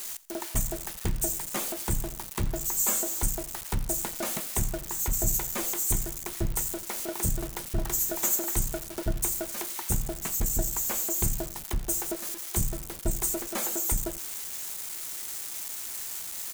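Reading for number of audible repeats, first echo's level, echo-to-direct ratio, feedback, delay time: 2, -20.5 dB, -20.0 dB, 32%, 85 ms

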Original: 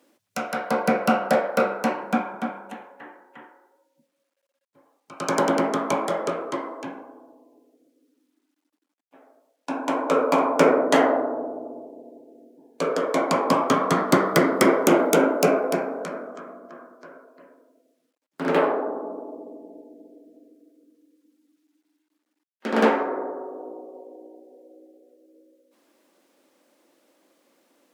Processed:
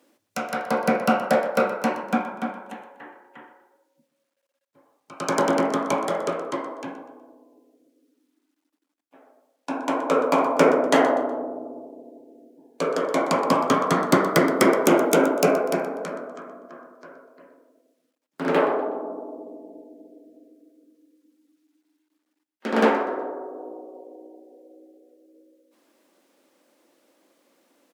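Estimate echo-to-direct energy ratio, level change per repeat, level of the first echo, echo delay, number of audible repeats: -15.5 dB, -9.0 dB, -16.0 dB, 0.123 s, 3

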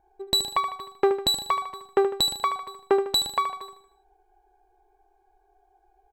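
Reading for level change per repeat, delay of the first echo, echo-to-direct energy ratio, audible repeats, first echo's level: -6.0 dB, 76 ms, -9.0 dB, 4, -10.0 dB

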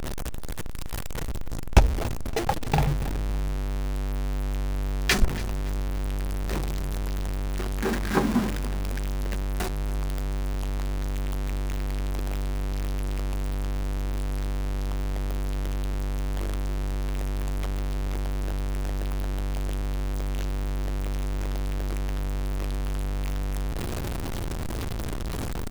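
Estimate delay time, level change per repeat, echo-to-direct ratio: 0.283 s, -8.5 dB, -18.0 dB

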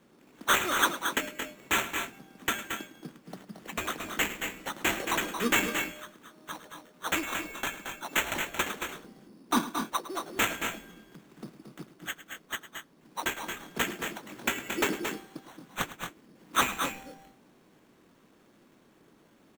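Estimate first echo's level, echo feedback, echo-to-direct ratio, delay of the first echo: -15.0 dB, no steady repeat, -5.5 dB, 0.106 s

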